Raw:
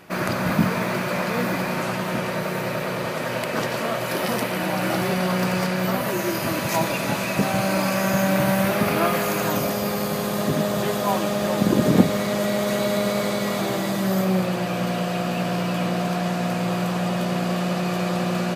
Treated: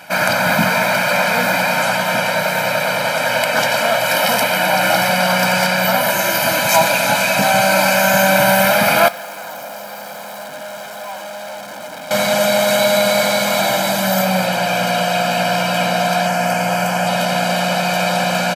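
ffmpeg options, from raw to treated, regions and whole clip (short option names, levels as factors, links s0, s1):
-filter_complex "[0:a]asettb=1/sr,asplit=3[s0][s1][s2];[s0]atrim=end=9.084[s3];[s1]atrim=start=9.08:end=12.11,asetpts=PTS-STARTPTS,afade=t=in:d=0.004:c=qsin,afade=t=out:st=3.026:d=0.004:c=qsin,highpass=f=190:p=1,aeval=exprs='(tanh(44.7*val(0)+0.7)-tanh(0.7))/44.7':c=same,acrossover=split=250|1600[s4][s5][s6];[s4]acompressor=threshold=0.00447:ratio=4[s7];[s5]acompressor=threshold=0.0141:ratio=4[s8];[s6]acompressor=threshold=0.00398:ratio=4[s9];[s7][s8][s9]amix=inputs=3:normalize=0[s10];[s2]atrim=start=12.106[s11];[s3][s10]acrossfade=d=0.004:c1=hsin:c2=qsin[s12];[s12][s11]acrossfade=d=0.004:c1=qsin:c2=hsin,asettb=1/sr,asplit=3[s13][s14][s15];[s13]atrim=end=16.264[s16];[s14]atrim=start=16.26:end=17.07,asetpts=PTS-STARTPTS,afade=t=in:d=0.004:c=qsin,afade=t=out:st=0.806:d=0.004:c=qsin,highpass=51,equalizer=f=3800:t=o:w=0.27:g=-13.5[s17];[s15]atrim=start=17.066[s18];[s16][s17]acrossfade=d=0.004:c1=hsin:c2=qsin[s19];[s19][s18]acrossfade=d=0.004:c1=qsin:c2=hsin,highpass=f=660:p=1,aecho=1:1:1.3:0.95,acontrast=84,volume=1.33"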